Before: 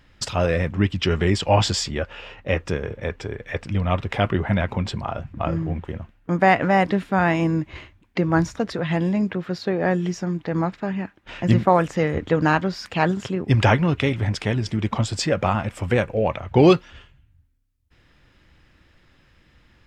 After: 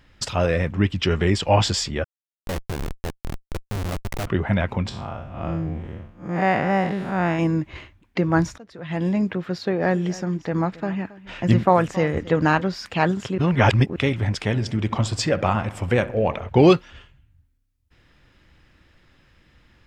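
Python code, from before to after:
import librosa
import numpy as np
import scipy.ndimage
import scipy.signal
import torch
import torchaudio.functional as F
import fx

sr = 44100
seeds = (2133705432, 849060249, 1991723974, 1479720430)

y = fx.schmitt(x, sr, flips_db=-22.5, at=(2.04, 4.27))
y = fx.spec_blur(y, sr, span_ms=159.0, at=(4.89, 7.39))
y = fx.echo_single(y, sr, ms=273, db=-18.5, at=(9.79, 12.61), fade=0.02)
y = fx.echo_filtered(y, sr, ms=65, feedback_pct=70, hz=2000.0, wet_db=-16, at=(14.52, 16.48), fade=0.02)
y = fx.edit(y, sr, fx.fade_in_from(start_s=8.58, length_s=0.49, curve='qua', floor_db=-20.5),
    fx.reverse_span(start_s=13.38, length_s=0.58), tone=tone)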